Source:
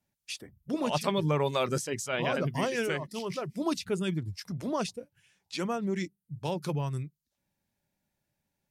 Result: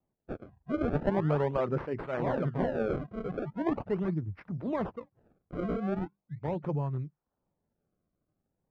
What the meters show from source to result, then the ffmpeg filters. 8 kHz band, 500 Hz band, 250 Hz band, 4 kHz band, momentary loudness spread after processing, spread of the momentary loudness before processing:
below −30 dB, 0.0 dB, +0.5 dB, below −15 dB, 12 LU, 11 LU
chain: -af "acrusher=samples=28:mix=1:aa=0.000001:lfo=1:lforange=44.8:lforate=0.4,lowpass=1200"

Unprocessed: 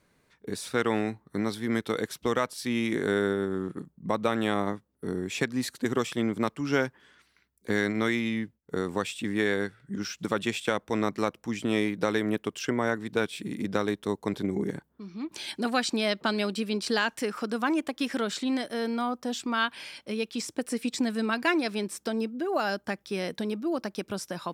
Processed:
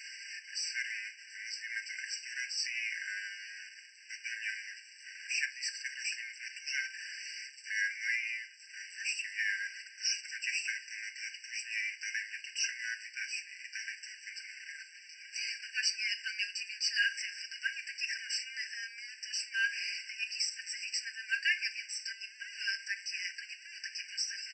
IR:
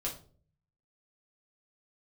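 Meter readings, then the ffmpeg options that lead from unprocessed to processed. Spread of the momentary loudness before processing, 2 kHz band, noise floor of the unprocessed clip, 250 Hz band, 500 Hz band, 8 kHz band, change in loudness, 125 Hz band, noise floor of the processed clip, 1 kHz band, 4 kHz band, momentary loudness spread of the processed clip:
8 LU, −1.0 dB, −69 dBFS, below −40 dB, below −40 dB, +2.0 dB, −6.5 dB, below −40 dB, −54 dBFS, below −40 dB, −0.5 dB, 12 LU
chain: -filter_complex "[0:a]aeval=exprs='val(0)+0.5*0.02*sgn(val(0))':channel_layout=same,highpass=510,aemphasis=mode=production:type=bsi,aecho=1:1:5.6:0.6,acrossover=split=830|1900[link_01][link_02][link_03];[link_01]acrusher=bits=5:mix=0:aa=0.000001[link_04];[link_04][link_02][link_03]amix=inputs=3:normalize=0,aresample=16000,aresample=44100,asplit=2[link_05][link_06];[1:a]atrim=start_sample=2205[link_07];[link_06][link_07]afir=irnorm=-1:irlink=0,volume=-3dB[link_08];[link_05][link_08]amix=inputs=2:normalize=0,afftfilt=real='re*eq(mod(floor(b*sr/1024/1500),2),1)':imag='im*eq(mod(floor(b*sr/1024/1500),2),1)':win_size=1024:overlap=0.75,volume=-8.5dB"

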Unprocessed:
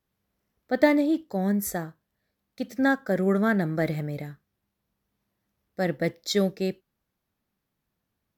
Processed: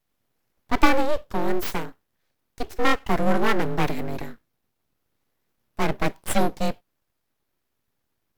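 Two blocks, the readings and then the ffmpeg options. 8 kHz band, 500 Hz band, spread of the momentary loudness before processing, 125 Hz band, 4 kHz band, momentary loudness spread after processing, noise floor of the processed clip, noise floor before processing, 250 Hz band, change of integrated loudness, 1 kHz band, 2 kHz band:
+1.5 dB, −0.5 dB, 15 LU, −1.0 dB, +3.0 dB, 15 LU, −77 dBFS, −82 dBFS, −2.5 dB, +0.5 dB, +8.0 dB, +2.5 dB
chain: -af "afreqshift=-22,aeval=exprs='abs(val(0))':channel_layout=same,volume=5dB"

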